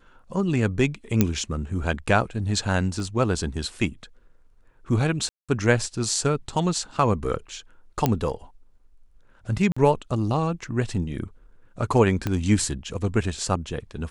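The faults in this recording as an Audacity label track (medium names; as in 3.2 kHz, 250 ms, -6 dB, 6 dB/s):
1.210000	1.210000	pop -4 dBFS
3.000000	3.000000	dropout 2.5 ms
5.290000	5.490000	dropout 196 ms
8.060000	8.060000	pop -7 dBFS
9.720000	9.770000	dropout 45 ms
12.270000	12.270000	pop -12 dBFS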